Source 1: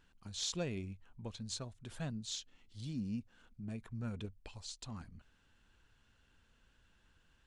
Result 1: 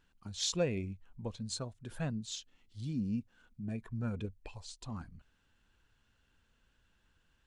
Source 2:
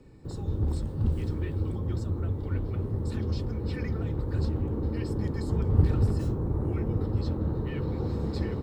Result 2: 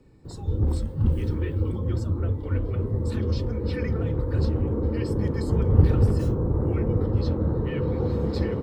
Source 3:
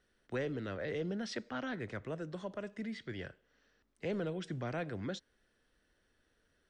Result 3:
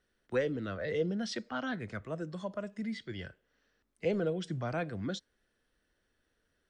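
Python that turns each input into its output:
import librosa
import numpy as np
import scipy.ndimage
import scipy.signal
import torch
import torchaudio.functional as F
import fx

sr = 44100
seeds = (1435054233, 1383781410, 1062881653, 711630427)

y = fx.noise_reduce_blind(x, sr, reduce_db=7)
y = fx.dynamic_eq(y, sr, hz=500.0, q=6.7, threshold_db=-55.0, ratio=4.0, max_db=7)
y = F.gain(torch.from_numpy(y), 4.5).numpy()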